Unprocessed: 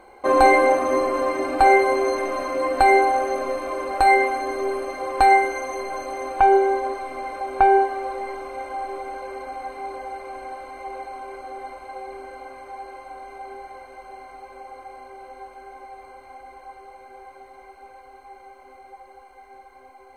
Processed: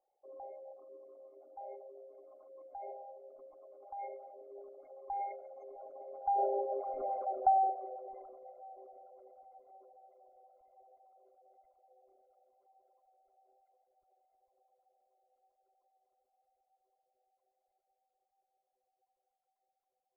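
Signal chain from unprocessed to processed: formant sharpening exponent 3; Doppler pass-by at 7.1, 7 m/s, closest 1.7 m; gain -5 dB

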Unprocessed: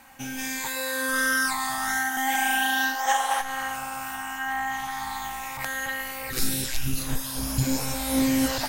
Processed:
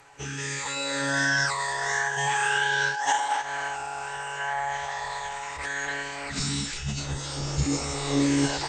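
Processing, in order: HPF 47 Hz 6 dB/oct; formant-preserving pitch shift -11 st

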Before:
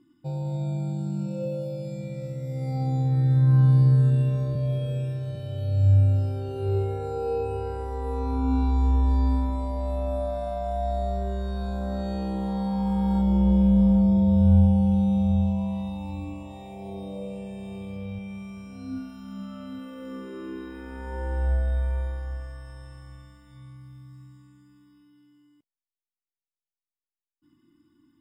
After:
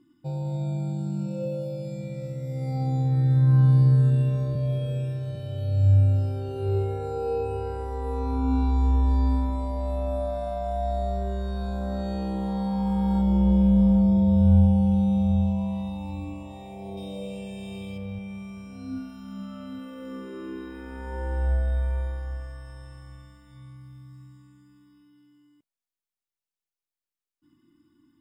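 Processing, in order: 16.97–17.98 resonant high shelf 2200 Hz +6.5 dB, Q 1.5

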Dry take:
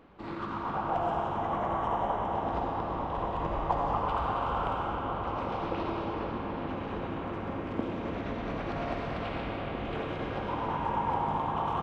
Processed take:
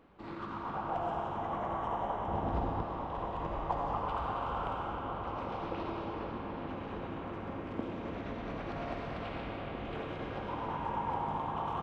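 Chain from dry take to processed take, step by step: 2.28–2.83 low shelf 250 Hz +10 dB; gain -5 dB

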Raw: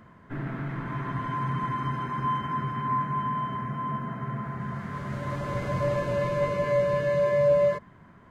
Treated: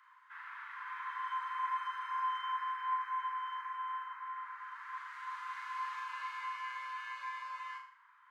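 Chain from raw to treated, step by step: steep high-pass 950 Hz 72 dB/oct; high shelf 4200 Hz -6.5 dB, from 4.03 s -12 dB; flutter echo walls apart 6.6 m, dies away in 0.51 s; gain -4.5 dB

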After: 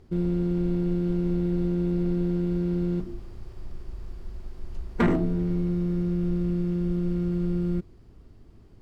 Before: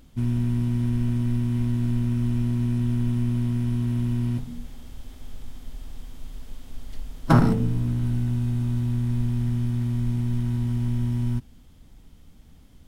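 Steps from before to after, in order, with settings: LPF 1500 Hz 6 dB/oct; wide varispeed 1.46×; in parallel at -5.5 dB: sine folder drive 4 dB, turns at -9.5 dBFS; on the sum: gain -8.5 dB

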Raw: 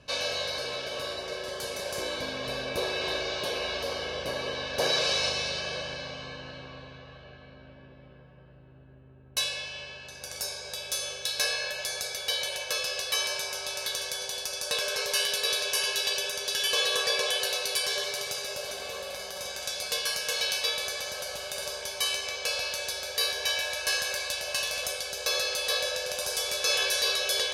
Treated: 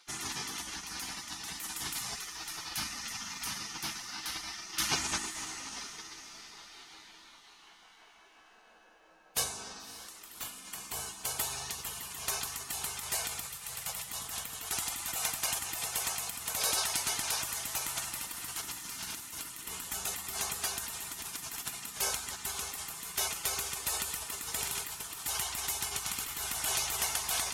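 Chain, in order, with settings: spectral gate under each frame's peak -20 dB weak; 13.45–14.07 Chebyshev band-stop 200–440 Hz, order 5; diffused feedback echo 0.583 s, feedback 54%, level -15.5 dB; gain +7 dB

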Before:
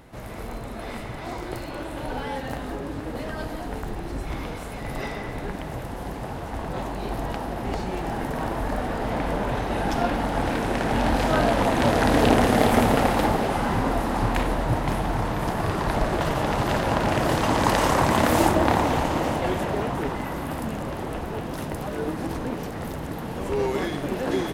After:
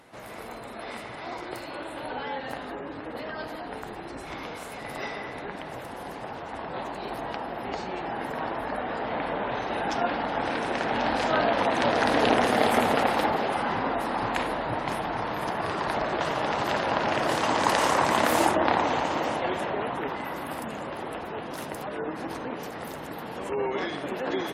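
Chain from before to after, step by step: HPF 490 Hz 6 dB/oct; spectral gate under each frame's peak -30 dB strong

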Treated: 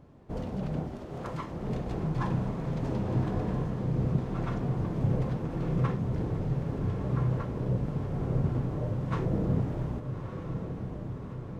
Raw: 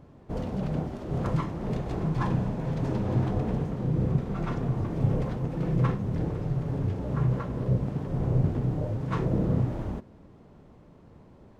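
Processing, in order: 1.05–1.51 low shelf 250 Hz -11 dB; diffused feedback echo 1.255 s, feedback 62%, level -7.5 dB; gain -3 dB

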